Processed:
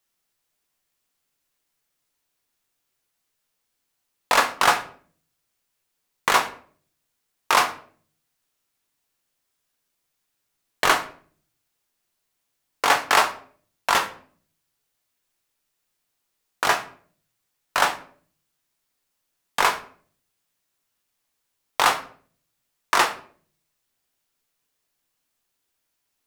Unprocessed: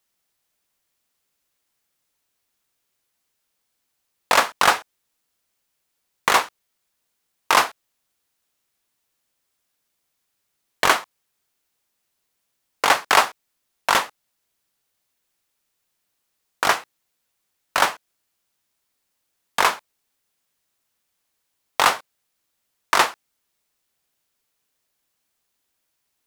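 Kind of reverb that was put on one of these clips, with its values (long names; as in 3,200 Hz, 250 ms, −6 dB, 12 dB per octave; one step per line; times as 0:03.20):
rectangular room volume 48 cubic metres, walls mixed, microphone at 0.3 metres
level −2.5 dB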